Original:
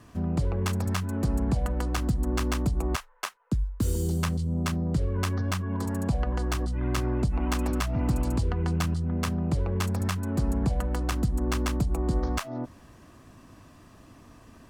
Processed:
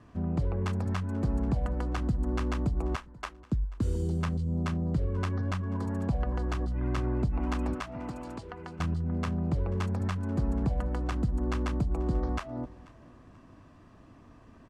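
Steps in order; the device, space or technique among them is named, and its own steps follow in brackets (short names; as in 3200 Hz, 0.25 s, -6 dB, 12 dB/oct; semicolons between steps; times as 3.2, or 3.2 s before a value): 7.73–8.79 HPF 400 Hz -> 900 Hz 6 dB/oct; through cloth (LPF 9400 Hz 12 dB/oct; high shelf 3800 Hz -13 dB); feedback echo 0.486 s, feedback 35%, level -22 dB; gain -2.5 dB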